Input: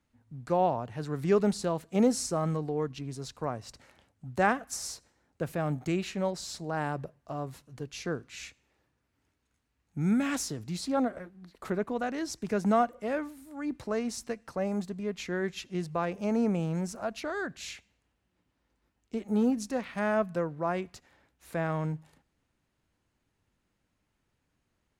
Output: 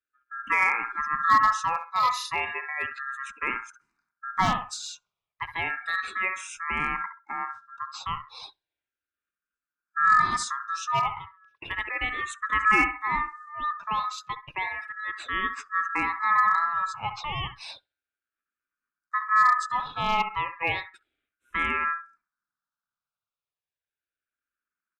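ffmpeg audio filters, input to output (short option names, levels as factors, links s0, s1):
-filter_complex "[0:a]lowpass=8200,asplit=2[s0][s1];[s1]adelay=66,lowpass=f=1400:p=1,volume=0.355,asplit=2[s2][s3];[s3]adelay=66,lowpass=f=1400:p=1,volume=0.33,asplit=2[s4][s5];[s5]adelay=66,lowpass=f=1400:p=1,volume=0.33,asplit=2[s6][s7];[s7]adelay=66,lowpass=f=1400:p=1,volume=0.33[s8];[s2][s4][s6][s8]amix=inputs=4:normalize=0[s9];[s0][s9]amix=inputs=2:normalize=0,aeval=exprs='val(0)*sin(2*PI*1500*n/s)':c=same,aecho=1:1:0.8:0.33,afftdn=nr=21:nf=-49,asplit=2[s10][s11];[s11]aeval=exprs='0.0944*(abs(mod(val(0)/0.0944+3,4)-2)-1)':c=same,volume=0.501[s12];[s10][s12]amix=inputs=2:normalize=0,asplit=2[s13][s14];[s14]afreqshift=-0.33[s15];[s13][s15]amix=inputs=2:normalize=1,volume=1.78"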